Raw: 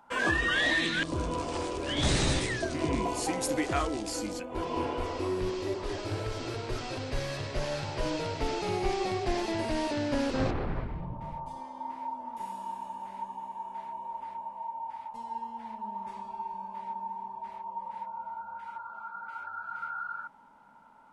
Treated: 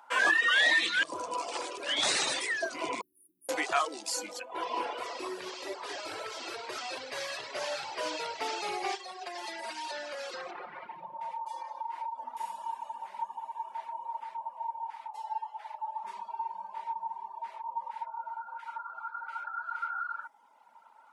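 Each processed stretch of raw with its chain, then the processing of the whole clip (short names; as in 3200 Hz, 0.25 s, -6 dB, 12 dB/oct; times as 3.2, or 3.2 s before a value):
3.01–3.49 passive tone stack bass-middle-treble 10-0-1 + companded quantiser 8-bit + brick-wall FIR band-stop 410–9300 Hz
8.95–12.24 low shelf 250 Hz -8.5 dB + comb 5.6 ms, depth 91% + compressor, threshold -34 dBFS
15.11–16.04 HPF 560 Hz 24 dB/oct + frequency shift -32 Hz
whole clip: reverb removal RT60 1.3 s; HPF 680 Hz 12 dB/oct; gain +4.5 dB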